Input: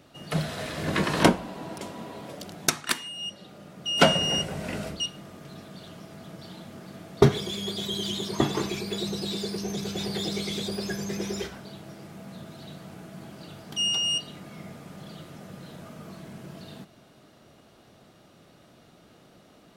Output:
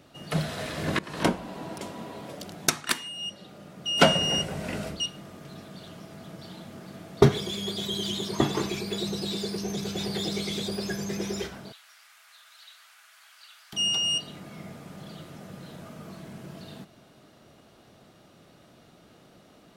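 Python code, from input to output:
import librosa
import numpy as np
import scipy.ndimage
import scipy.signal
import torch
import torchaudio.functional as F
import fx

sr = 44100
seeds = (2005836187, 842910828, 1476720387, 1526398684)

y = fx.highpass(x, sr, hz=1300.0, slope=24, at=(11.72, 13.73))
y = fx.edit(y, sr, fx.fade_in_from(start_s=0.99, length_s=0.56, floor_db=-22.5), tone=tone)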